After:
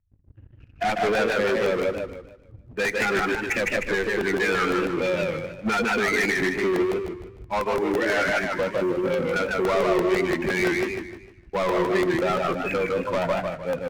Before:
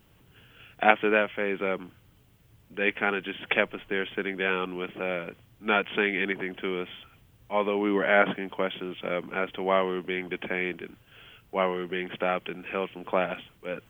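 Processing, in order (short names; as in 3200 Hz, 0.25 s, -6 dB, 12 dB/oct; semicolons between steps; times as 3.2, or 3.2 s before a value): per-bin expansion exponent 2; echo 0.159 s -15.5 dB; in parallel at 0 dB: compressor, threshold -40 dBFS, peak gain reduction 23 dB; on the sum: overloaded stage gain 20.5 dB; steep low-pass 2500 Hz 96 dB/oct; bell 1900 Hz +5.5 dB 0.27 oct; limiter -25 dBFS, peak gain reduction 10.5 dB; 7.59–8.5 HPF 780 Hz 6 dB/oct; sample leveller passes 3; on a send at -17 dB: reverb RT60 0.60 s, pre-delay 6 ms; on the sum: crackling interface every 0.17 s, samples 64, repeat, from 0.98; warbling echo 0.152 s, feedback 35%, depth 152 cents, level -3 dB; gain +5.5 dB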